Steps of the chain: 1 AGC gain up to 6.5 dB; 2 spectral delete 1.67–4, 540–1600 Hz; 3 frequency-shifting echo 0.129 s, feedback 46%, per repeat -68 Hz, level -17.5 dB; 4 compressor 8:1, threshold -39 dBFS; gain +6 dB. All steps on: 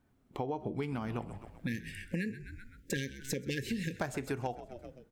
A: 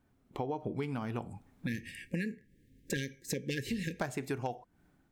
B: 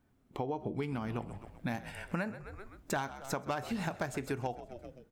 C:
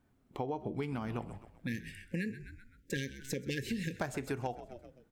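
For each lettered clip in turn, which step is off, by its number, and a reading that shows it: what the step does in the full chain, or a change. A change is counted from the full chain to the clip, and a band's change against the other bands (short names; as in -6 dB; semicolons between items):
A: 3, momentary loudness spread change -5 LU; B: 2, 1 kHz band +5.0 dB; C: 1, 8 kHz band -2.0 dB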